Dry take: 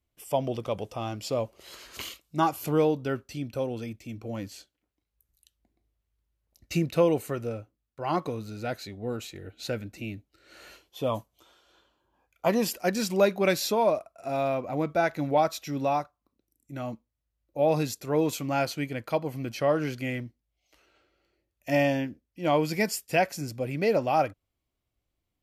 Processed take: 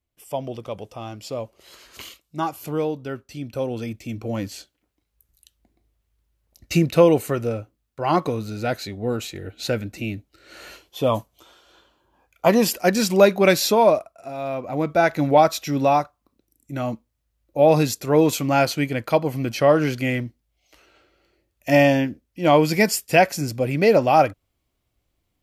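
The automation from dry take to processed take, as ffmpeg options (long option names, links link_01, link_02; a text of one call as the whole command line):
ffmpeg -i in.wav -af "volume=20.5dB,afade=type=in:start_time=3.24:duration=0.83:silence=0.354813,afade=type=out:start_time=13.93:duration=0.41:silence=0.251189,afade=type=in:start_time=14.34:duration=0.84:silence=0.237137" out.wav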